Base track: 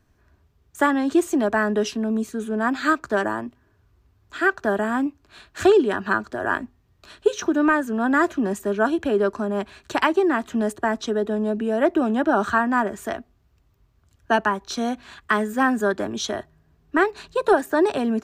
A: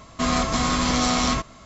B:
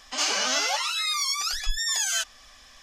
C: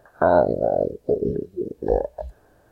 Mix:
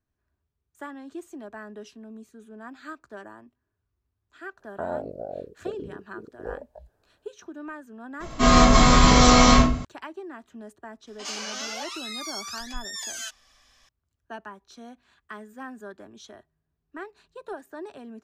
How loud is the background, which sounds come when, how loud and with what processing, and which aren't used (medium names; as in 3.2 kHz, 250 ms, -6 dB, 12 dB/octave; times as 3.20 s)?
base track -19.5 dB
4.57 s: add C -14.5 dB
8.20 s: add A -4 dB + simulated room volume 44 m³, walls mixed, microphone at 1.7 m
11.07 s: add B -9 dB